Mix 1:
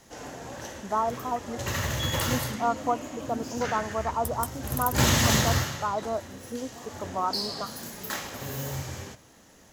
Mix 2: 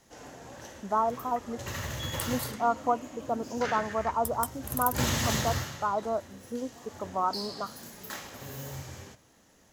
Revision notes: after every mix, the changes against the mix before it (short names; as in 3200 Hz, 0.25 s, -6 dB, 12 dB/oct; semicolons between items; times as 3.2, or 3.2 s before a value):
first sound -6.5 dB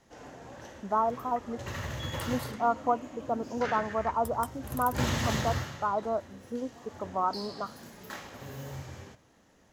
master: add high shelf 5200 Hz -11 dB